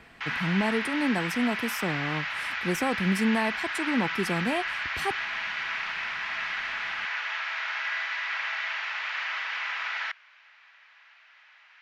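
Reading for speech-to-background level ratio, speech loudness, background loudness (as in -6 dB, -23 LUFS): 1.0 dB, -29.5 LUFS, -30.5 LUFS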